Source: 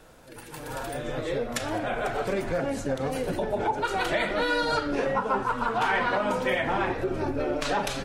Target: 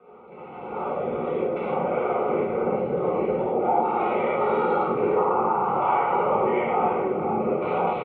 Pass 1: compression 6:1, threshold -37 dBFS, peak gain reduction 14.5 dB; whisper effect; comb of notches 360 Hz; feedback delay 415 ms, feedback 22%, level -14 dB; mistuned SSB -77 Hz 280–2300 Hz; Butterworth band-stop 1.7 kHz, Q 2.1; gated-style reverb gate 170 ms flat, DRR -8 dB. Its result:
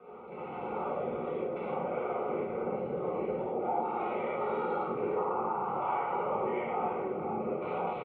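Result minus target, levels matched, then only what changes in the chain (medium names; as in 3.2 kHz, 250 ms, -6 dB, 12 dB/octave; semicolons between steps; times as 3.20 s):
compression: peak gain reduction +10 dB
change: compression 6:1, threshold -25 dBFS, peak gain reduction 4.5 dB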